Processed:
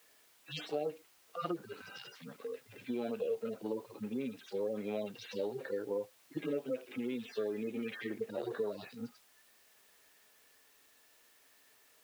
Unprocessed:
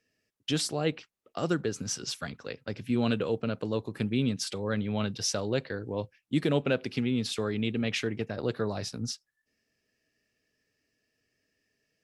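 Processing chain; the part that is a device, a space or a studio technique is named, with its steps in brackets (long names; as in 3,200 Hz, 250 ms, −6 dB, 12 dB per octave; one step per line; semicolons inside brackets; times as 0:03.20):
harmonic-percussive split with one part muted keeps harmonic
baby monitor (band-pass filter 320–3,400 Hz; downward compressor, threshold −39 dBFS, peak gain reduction 12 dB; white noise bed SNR 25 dB)
bass and treble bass −8 dB, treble −3 dB
level +7.5 dB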